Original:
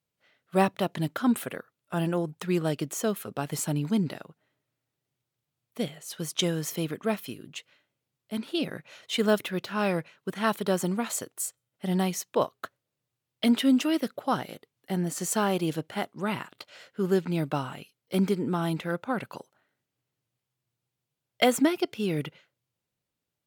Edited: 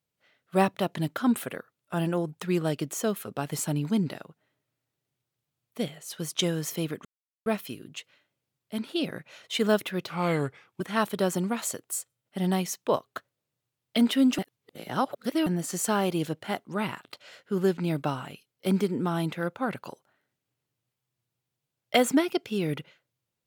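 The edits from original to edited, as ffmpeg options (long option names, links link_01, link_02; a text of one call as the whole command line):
ffmpeg -i in.wav -filter_complex "[0:a]asplit=6[link_01][link_02][link_03][link_04][link_05][link_06];[link_01]atrim=end=7.05,asetpts=PTS-STARTPTS,afade=type=out:start_time=7.046:duration=0.004:curve=hsin,apad=pad_dur=0.41[link_07];[link_02]atrim=start=7.05:end=9.684,asetpts=PTS-STARTPTS,afade=type=in:duration=0.004:curve=hsin[link_08];[link_03]atrim=start=9.68:end=10.28,asetpts=PTS-STARTPTS,asetrate=37044,aresample=44100[link_09];[link_04]atrim=start=10.276:end=13.862[link_10];[link_05]atrim=start=13.858:end=14.942,asetpts=PTS-STARTPTS,areverse[link_11];[link_06]atrim=start=14.938[link_12];[link_07][link_08]concat=n=2:v=0:a=1[link_13];[link_13][link_09]acrossfade=duration=0.004:curve1=hsin:curve2=hsin[link_14];[link_14][link_10]acrossfade=duration=0.004:curve1=hsin:curve2=hsin[link_15];[link_15][link_11]acrossfade=duration=0.004:curve1=hsin:curve2=hsin[link_16];[link_16][link_12]acrossfade=duration=0.004:curve1=hsin:curve2=hsin" out.wav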